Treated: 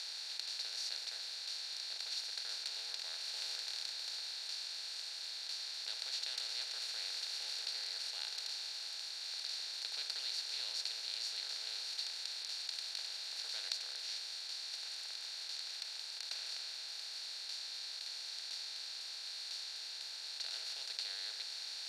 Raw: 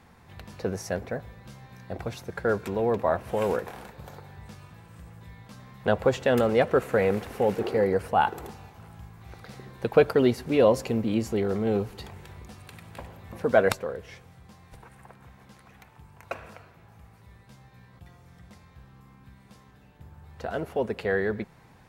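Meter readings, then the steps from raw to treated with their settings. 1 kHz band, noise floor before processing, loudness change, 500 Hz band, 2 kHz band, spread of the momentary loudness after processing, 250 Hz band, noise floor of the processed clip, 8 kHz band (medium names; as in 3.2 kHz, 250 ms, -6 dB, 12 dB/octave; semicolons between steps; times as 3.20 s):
-26.5 dB, -55 dBFS, -13.5 dB, -39.0 dB, -14.0 dB, 4 LU, under -40 dB, -46 dBFS, +3.0 dB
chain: spectral levelling over time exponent 0.2; ladder band-pass 4.6 kHz, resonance 80%; trim -1.5 dB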